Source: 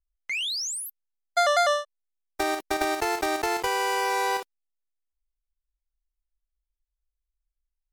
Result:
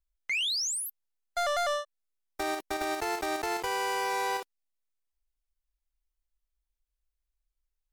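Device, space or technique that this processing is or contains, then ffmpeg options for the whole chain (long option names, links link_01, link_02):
soft clipper into limiter: -af "asoftclip=type=tanh:threshold=-18dB,alimiter=limit=-24dB:level=0:latency=1:release=327"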